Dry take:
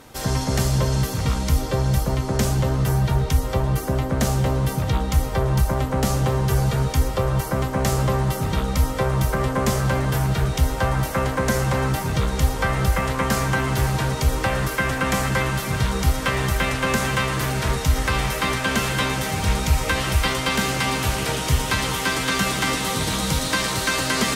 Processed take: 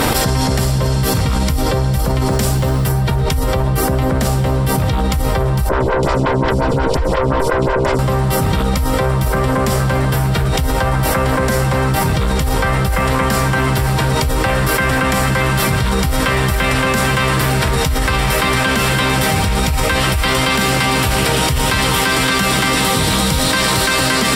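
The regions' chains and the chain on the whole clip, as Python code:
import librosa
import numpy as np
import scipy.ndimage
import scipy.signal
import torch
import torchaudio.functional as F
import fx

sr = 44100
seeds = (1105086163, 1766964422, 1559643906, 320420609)

y = fx.chain(x, sr, fx.high_shelf(hz=4800.0, db=4.5),
    fx.mod_noise(seeds[0], snr_db=31), at=(2.26, 2.92))
y = fx.chain(y, sr, fx.lower_of_two(delay_ms=2.0),
    fx.air_absorb(metres=84.0),
    fx.stagger_phaser(hz=5.6), at=(5.69, 7.99))
y = fx.notch(y, sr, hz=6400.0, q=6.5)
y = fx.env_flatten(y, sr, amount_pct=100)
y = y * 10.0 ** (-2.0 / 20.0)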